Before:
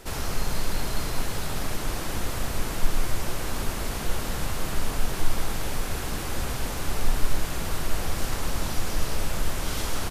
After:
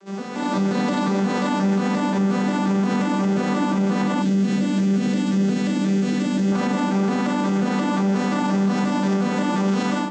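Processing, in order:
vocoder with an arpeggio as carrier major triad, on G3, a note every 177 ms
convolution reverb RT60 2.4 s, pre-delay 7 ms, DRR −0.5 dB
automatic gain control gain up to 14 dB
0:04.22–0:06.52: parametric band 980 Hz −15 dB 1.4 octaves
brickwall limiter −13.5 dBFS, peak gain reduction 10 dB

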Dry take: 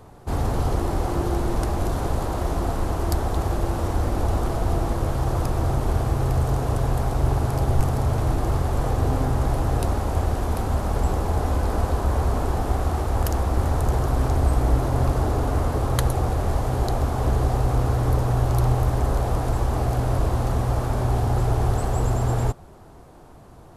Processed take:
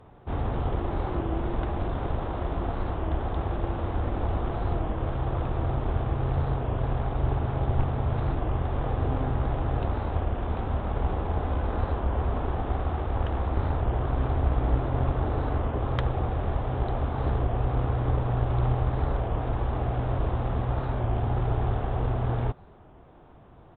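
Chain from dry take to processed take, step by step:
downsampling to 8,000 Hz
harmonic generator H 2 −21 dB, 3 −25 dB, 6 −38 dB, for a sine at −6.5 dBFS
wow of a warped record 33 1/3 rpm, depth 100 cents
level −3.5 dB

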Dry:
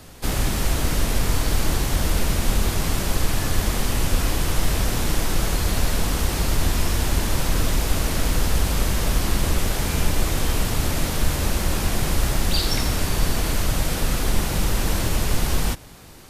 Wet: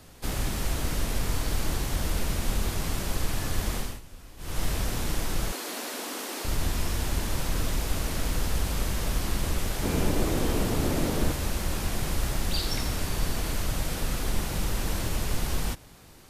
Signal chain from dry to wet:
0:03.76–0:04.62: duck −19 dB, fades 0.25 s
0:05.52–0:06.45: Butterworth high-pass 240 Hz 48 dB per octave
0:09.83–0:11.32: parametric band 340 Hz +10 dB 2.3 octaves
level −7 dB

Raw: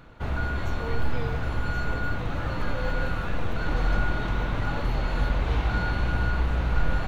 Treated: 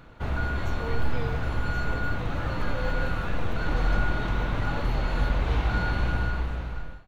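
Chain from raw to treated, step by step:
fade-out on the ending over 1.03 s

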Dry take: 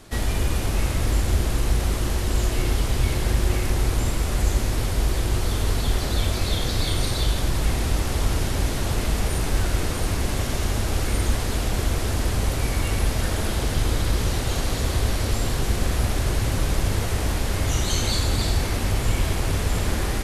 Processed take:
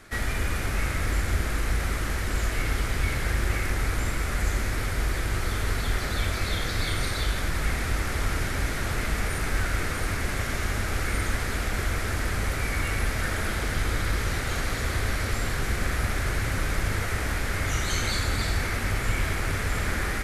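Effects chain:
flat-topped bell 1,700 Hz +9 dB 1.1 octaves
mains-hum notches 60/120/180/240/300/360 Hz
level −4.5 dB

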